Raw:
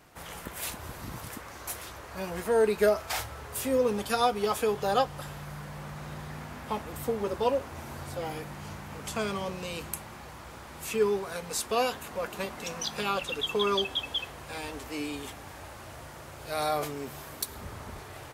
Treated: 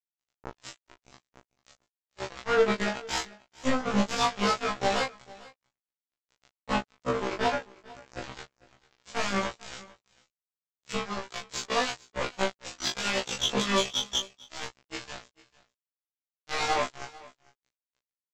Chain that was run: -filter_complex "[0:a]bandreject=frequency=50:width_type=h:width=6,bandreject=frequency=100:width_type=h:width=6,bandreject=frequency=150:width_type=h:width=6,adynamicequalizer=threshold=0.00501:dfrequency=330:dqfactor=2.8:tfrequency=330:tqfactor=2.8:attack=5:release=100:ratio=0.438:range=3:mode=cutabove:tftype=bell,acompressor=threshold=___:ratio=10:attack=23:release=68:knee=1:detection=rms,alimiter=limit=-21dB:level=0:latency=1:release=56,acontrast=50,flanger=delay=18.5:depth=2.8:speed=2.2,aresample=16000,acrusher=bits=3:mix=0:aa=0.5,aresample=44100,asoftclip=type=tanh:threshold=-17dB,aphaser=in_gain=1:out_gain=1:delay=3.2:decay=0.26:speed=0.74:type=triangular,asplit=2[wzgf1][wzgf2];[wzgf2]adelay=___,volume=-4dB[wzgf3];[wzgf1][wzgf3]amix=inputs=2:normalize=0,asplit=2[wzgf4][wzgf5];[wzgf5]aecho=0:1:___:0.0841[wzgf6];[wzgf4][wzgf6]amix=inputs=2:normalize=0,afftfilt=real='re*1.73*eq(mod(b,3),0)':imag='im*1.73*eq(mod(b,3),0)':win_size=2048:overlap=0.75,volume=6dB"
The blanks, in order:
-29dB, 24, 447